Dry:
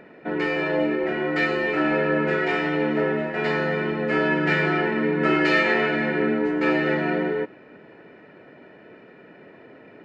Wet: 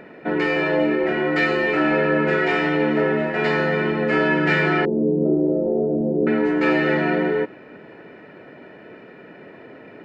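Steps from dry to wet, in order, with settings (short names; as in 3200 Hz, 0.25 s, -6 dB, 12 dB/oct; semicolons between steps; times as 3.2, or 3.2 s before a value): 4.85–6.27 steep low-pass 610 Hz 36 dB/oct; in parallel at -2.5 dB: limiter -19 dBFS, peak gain reduction 8.5 dB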